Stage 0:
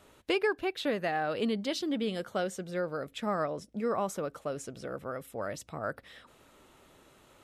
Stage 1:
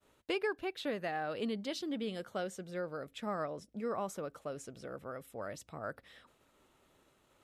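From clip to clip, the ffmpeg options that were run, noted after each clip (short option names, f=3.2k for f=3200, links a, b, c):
-af "agate=range=-33dB:threshold=-55dB:ratio=3:detection=peak,volume=-6dB"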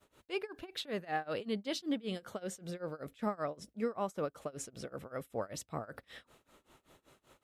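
-af "acompressor=threshold=-37dB:ratio=4,tremolo=f=5.2:d=0.95,volume=8dB"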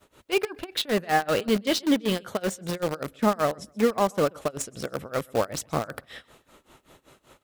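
-filter_complex "[0:a]aecho=1:1:129|258:0.0708|0.0198,asplit=2[a][b];[b]acrusher=bits=5:mix=0:aa=0.000001,volume=-5dB[c];[a][c]amix=inputs=2:normalize=0,volume=9dB"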